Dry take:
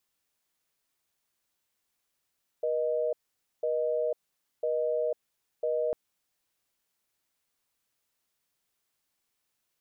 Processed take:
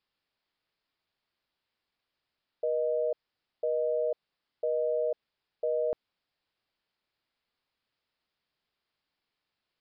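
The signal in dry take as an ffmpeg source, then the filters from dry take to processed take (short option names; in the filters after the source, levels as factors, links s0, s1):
-f lavfi -i "aevalsrc='0.0376*(sin(2*PI*480*t)+sin(2*PI*620*t))*clip(min(mod(t,1),0.5-mod(t,1))/0.005,0,1)':d=3.3:s=44100"
-af "aresample=11025,aresample=44100"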